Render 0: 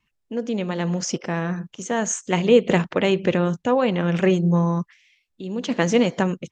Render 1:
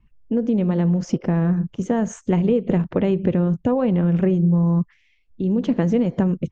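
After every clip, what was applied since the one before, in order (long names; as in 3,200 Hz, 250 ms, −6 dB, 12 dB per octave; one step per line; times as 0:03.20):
spectral tilt −4.5 dB per octave
downward compressor 5 to 1, threshold −18 dBFS, peak gain reduction 13.5 dB
level +1.5 dB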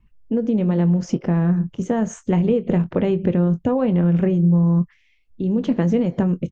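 double-tracking delay 23 ms −13 dB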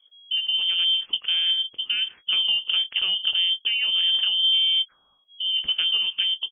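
voice inversion scrambler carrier 3,300 Hz
level −5 dB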